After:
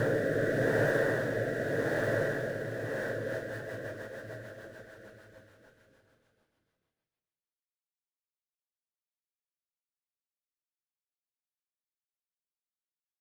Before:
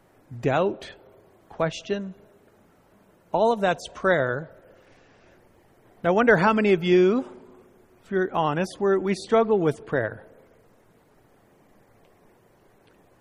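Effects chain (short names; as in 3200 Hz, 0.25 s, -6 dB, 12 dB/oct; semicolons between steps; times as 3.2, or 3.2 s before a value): sample gate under -35 dBFS; Paulstretch 11×, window 1.00 s, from 9.98; rotary speaker horn 0.85 Hz, later 6.7 Hz, at 2.79; gain +1 dB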